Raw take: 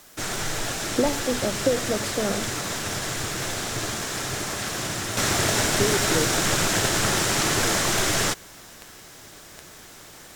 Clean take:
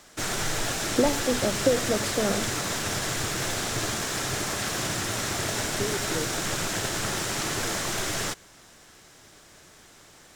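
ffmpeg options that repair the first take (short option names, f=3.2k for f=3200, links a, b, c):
-af "adeclick=t=4,agate=range=-21dB:threshold=-37dB,asetnsamples=n=441:p=0,asendcmd='5.17 volume volume -6.5dB',volume=0dB"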